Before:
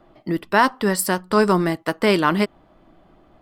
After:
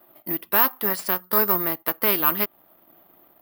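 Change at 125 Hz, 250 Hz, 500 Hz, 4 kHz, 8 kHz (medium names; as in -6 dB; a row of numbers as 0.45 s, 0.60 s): -13.0 dB, -11.0 dB, -8.5 dB, -5.0 dB, -7.0 dB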